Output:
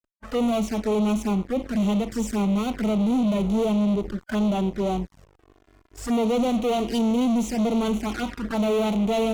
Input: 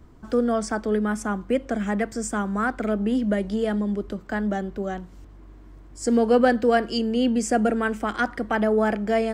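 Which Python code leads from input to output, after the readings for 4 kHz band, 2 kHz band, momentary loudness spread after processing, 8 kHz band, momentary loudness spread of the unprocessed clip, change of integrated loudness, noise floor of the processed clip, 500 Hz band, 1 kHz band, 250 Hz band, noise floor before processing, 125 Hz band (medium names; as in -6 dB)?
+1.5 dB, -8.5 dB, 5 LU, -2.5 dB, 8 LU, 0.0 dB, -60 dBFS, -2.5 dB, -3.0 dB, +2.0 dB, -46 dBFS, +4.0 dB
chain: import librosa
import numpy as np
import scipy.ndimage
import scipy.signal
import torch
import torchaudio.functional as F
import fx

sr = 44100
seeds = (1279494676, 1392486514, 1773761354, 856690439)

y = fx.fuzz(x, sr, gain_db=35.0, gate_db=-41.0)
y = fx.hpss(y, sr, part='percussive', gain_db=-13)
y = fx.env_flanger(y, sr, rest_ms=3.2, full_db=-15.5)
y = y * librosa.db_to_amplitude(-6.0)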